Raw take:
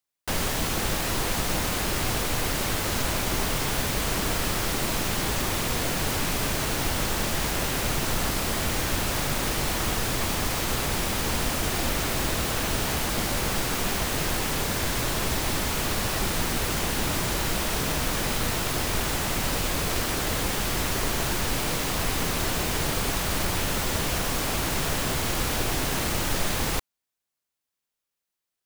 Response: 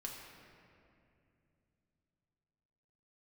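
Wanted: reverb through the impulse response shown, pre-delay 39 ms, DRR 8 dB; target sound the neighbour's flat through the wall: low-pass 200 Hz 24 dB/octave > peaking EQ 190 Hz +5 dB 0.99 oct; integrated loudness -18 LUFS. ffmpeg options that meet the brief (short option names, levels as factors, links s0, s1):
-filter_complex "[0:a]asplit=2[s0][s1];[1:a]atrim=start_sample=2205,adelay=39[s2];[s1][s2]afir=irnorm=-1:irlink=0,volume=0.501[s3];[s0][s3]amix=inputs=2:normalize=0,lowpass=f=200:w=0.5412,lowpass=f=200:w=1.3066,equalizer=f=190:t=o:w=0.99:g=5,volume=5.31"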